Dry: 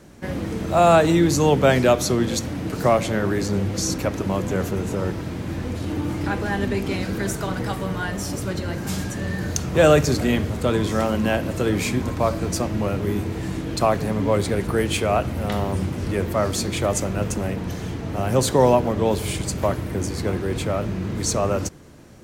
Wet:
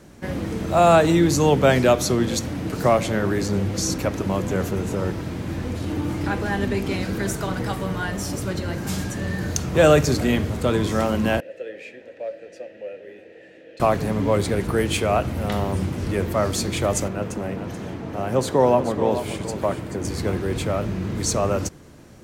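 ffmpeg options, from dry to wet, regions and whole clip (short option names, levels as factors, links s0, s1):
-filter_complex "[0:a]asettb=1/sr,asplit=3[s0][s1][s2];[s0]atrim=end=11.404[s3];[s1]atrim=start=11.4:end=13.8,asetpts=PTS-STARTPTS,afade=t=in:d=0.004:c=qsin,afade=t=out:st=2.396:d=0.004:c=qsin,asplit=3[s4][s5][s6];[s4]bandpass=f=530:t=q:w=8,volume=1[s7];[s5]bandpass=f=1840:t=q:w=8,volume=0.501[s8];[s6]bandpass=f=2480:t=q:w=8,volume=0.355[s9];[s7][s8][s9]amix=inputs=3:normalize=0,lowshelf=f=250:g=-9.5[s10];[s2]atrim=start=13.796[s11];[s3][s10]acrossfade=d=0.004:c1=hsin:c2=qsin[s12];[s12][s11]acrossfade=d=0.004:c1=qsin:c2=hsin,asettb=1/sr,asplit=3[s13][s14][s15];[s13]atrim=end=17.084[s16];[s14]atrim=start=17.08:end=20.05,asetpts=PTS-STARTPTS,afade=t=in:d=0.004:c=qsin,afade=t=out:st=2.966:d=0.004:c=qsin,highpass=f=190:p=1,highshelf=f=2800:g=-9,aecho=1:1:431:0.316,atrim=end_sample=130977[s17];[s15]atrim=start=20.046[s18];[s16][s17]acrossfade=d=0.004:c1=hsin:c2=qsin[s19];[s19][s18]acrossfade=d=0.004:c1=qsin:c2=hsin"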